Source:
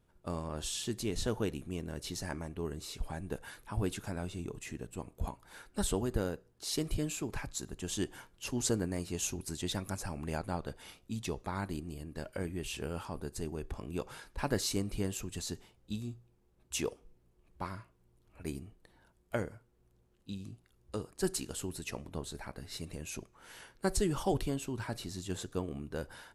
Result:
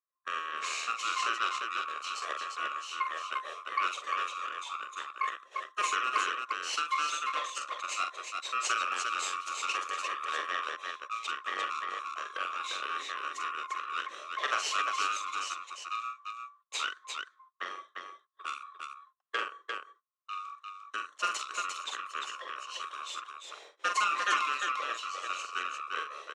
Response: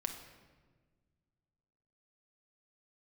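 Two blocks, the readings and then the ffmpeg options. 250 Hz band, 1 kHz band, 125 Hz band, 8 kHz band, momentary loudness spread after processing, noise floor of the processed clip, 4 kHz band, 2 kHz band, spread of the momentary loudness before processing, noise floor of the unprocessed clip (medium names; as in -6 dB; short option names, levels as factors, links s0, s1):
-21.0 dB, +14.0 dB, under -35 dB, -0.5 dB, 11 LU, -69 dBFS, +6.5 dB, +12.5 dB, 11 LU, -69 dBFS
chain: -af "afftfilt=real='real(if(lt(b,960),b+48*(1-2*mod(floor(b/48),2)),b),0)':imag='imag(if(lt(b,960),b+48*(1-2*mod(floor(b/48),2)),b),0)':win_size=2048:overlap=0.75,agate=range=0.0282:threshold=0.00178:ratio=16:detection=peak,bandreject=f=2000:w=22,adynamicequalizer=threshold=0.00447:dfrequency=3500:dqfactor=1:tfrequency=3500:tqfactor=1:attack=5:release=100:ratio=0.375:range=1.5:mode=boostabove:tftype=bell,aeval=exprs='0.158*(cos(1*acos(clip(val(0)/0.158,-1,1)))-cos(1*PI/2))+0.0282*(cos(6*acos(clip(val(0)/0.158,-1,1)))-cos(6*PI/2))':c=same,highpass=f=430:w=0.5412,highpass=f=430:w=1.3066,equalizer=f=700:t=q:w=4:g=-5,equalizer=f=1500:t=q:w=4:g=-6,equalizer=f=4900:t=q:w=4:g=-9,lowpass=f=6600:w=0.5412,lowpass=f=6600:w=1.3066,aecho=1:1:44|349:0.473|0.596,volume=1.33"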